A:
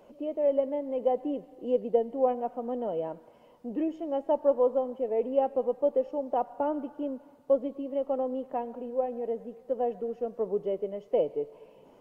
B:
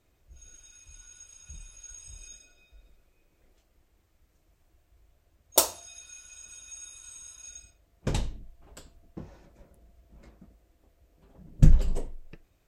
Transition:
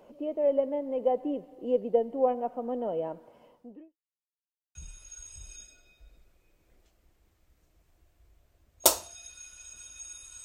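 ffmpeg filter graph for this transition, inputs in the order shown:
-filter_complex "[0:a]apad=whole_dur=10.44,atrim=end=10.44,asplit=2[s0][s1];[s0]atrim=end=3.97,asetpts=PTS-STARTPTS,afade=t=out:st=3.45:d=0.52:c=qua[s2];[s1]atrim=start=3.97:end=4.75,asetpts=PTS-STARTPTS,volume=0[s3];[1:a]atrim=start=1.47:end=7.16,asetpts=PTS-STARTPTS,afade=t=in:d=0.004:c=hsin[s4];[s2][s3][s4]concat=n=3:v=0:a=1"

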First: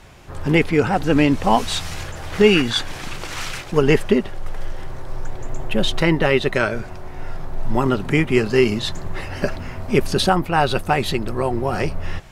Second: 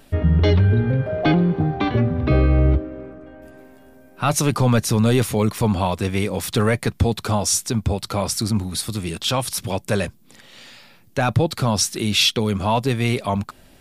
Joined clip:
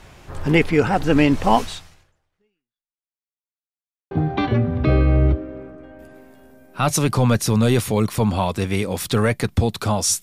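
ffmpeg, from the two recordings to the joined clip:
-filter_complex "[0:a]apad=whole_dur=10.22,atrim=end=10.22,asplit=2[s0][s1];[s0]atrim=end=3.13,asetpts=PTS-STARTPTS,afade=t=out:st=1.59:d=1.54:c=exp[s2];[s1]atrim=start=3.13:end=4.11,asetpts=PTS-STARTPTS,volume=0[s3];[1:a]atrim=start=1.54:end=7.65,asetpts=PTS-STARTPTS,afade=t=in:d=0.004:c=hsin[s4];[s2][s3][s4]concat=n=3:v=0:a=1"

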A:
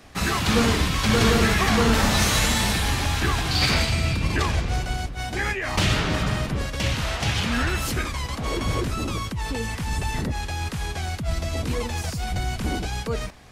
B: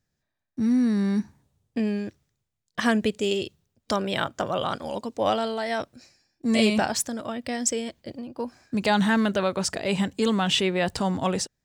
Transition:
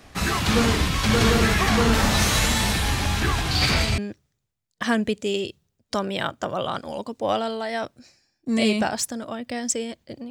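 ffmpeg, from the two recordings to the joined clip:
-filter_complex "[1:a]asplit=2[s0][s1];[0:a]apad=whole_dur=10.3,atrim=end=10.3,atrim=end=3.982[s2];[s1]atrim=start=1.948:end=8.27[s3];[s0]atrim=start=0.97:end=1.95,asetpts=PTS-STARTPTS,volume=0.266,afade=t=in:d=0.004:c=hsin,afade=t=out:st=0.976:d=0.004:c=hsin,adelay=3000[s4];[s2][s3]acrossfade=d=0.004:c1=hsin:c2=hsin[s5];[s5][s4]amix=inputs=2:normalize=0"

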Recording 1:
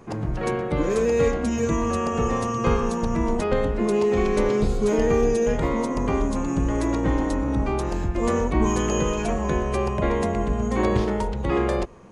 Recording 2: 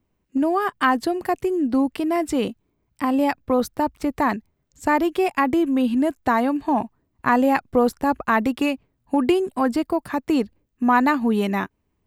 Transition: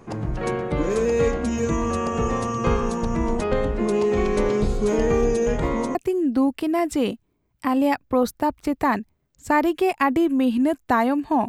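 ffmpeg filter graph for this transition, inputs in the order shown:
-filter_complex "[0:a]apad=whole_dur=11.48,atrim=end=11.48,atrim=end=5.952[s0];[1:a]atrim=start=1.318:end=6.85[s1];[s0][s1]acrossfade=d=0.004:c1=hsin:c2=hsin"

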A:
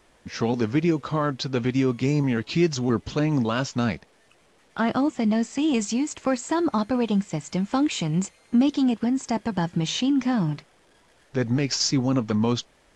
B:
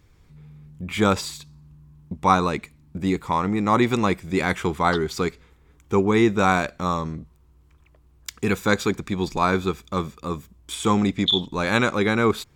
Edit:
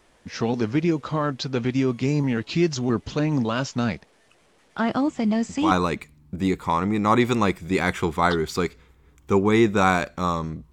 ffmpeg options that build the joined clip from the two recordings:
-filter_complex "[1:a]asplit=2[s0][s1];[0:a]apad=whole_dur=10.72,atrim=end=10.72,atrim=end=5.712[s2];[s1]atrim=start=2.328:end=7.34[s3];[s0]atrim=start=1.67:end=2.33,asetpts=PTS-STARTPTS,volume=0.422,afade=t=in:d=0.004:c=hsin,afade=t=out:st=0.656:d=0.004:c=hsin,adelay=222705S[s4];[s2][s3]acrossfade=d=0.004:c1=hsin:c2=hsin[s5];[s5][s4]amix=inputs=2:normalize=0"

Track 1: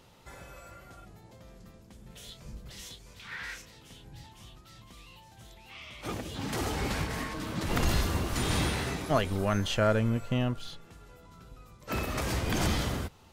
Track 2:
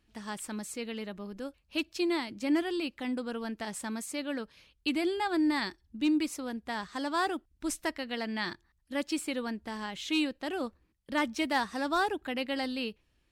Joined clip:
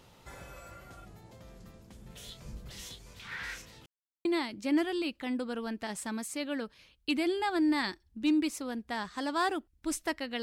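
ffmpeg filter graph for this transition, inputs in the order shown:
-filter_complex "[0:a]apad=whole_dur=10.42,atrim=end=10.42,asplit=2[s0][s1];[s0]atrim=end=3.86,asetpts=PTS-STARTPTS,afade=t=out:st=3.856:d=0.004:c=hsin[s2];[s1]atrim=start=3.86:end=4.25,asetpts=PTS-STARTPTS,volume=0[s3];[1:a]atrim=start=2.03:end=8.2,asetpts=PTS-STARTPTS,afade=t=in:d=0.004:c=hsin[s4];[s2][s3][s4]concat=n=3:v=0:a=1"

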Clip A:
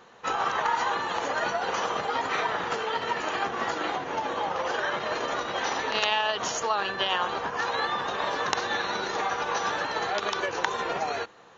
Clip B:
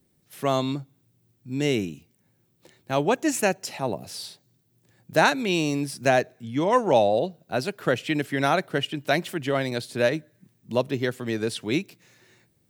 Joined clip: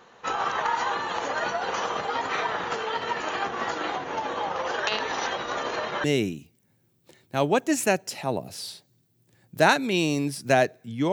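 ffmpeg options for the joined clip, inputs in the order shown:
-filter_complex "[0:a]apad=whole_dur=11.12,atrim=end=11.12,asplit=2[s0][s1];[s0]atrim=end=4.872[s2];[s1]atrim=start=4.868:end=6.042,asetpts=PTS-STARTPTS,areverse[s3];[1:a]atrim=start=1.598:end=6.68[s4];[s2][s3]acrossfade=d=0.004:c1=hsin:c2=hsin[s5];[s5][s4]acrossfade=d=0.004:c1=hsin:c2=hsin"

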